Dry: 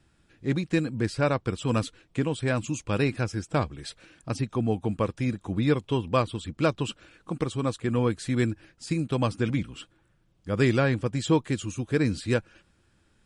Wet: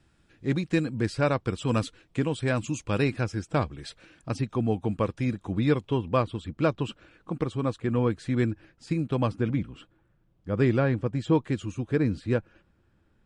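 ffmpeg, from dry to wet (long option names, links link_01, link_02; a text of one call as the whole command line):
ffmpeg -i in.wav -af "asetnsamples=nb_out_samples=441:pad=0,asendcmd='3.14 lowpass f 5100;5.89 lowpass f 2200;9.32 lowpass f 1300;11.35 lowpass f 2100;11.96 lowpass f 1200',lowpass=frequency=9000:poles=1" out.wav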